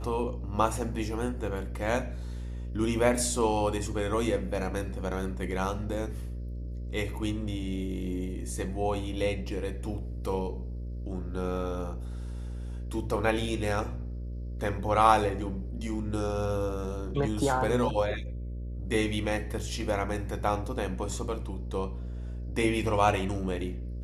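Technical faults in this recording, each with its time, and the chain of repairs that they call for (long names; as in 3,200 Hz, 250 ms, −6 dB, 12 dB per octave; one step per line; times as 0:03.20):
mains buzz 60 Hz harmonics 10 −36 dBFS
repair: hum removal 60 Hz, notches 10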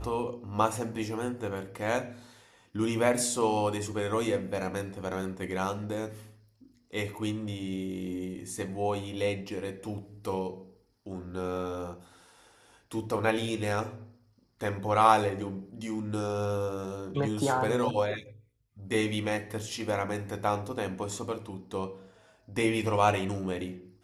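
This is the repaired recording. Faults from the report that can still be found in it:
none of them is left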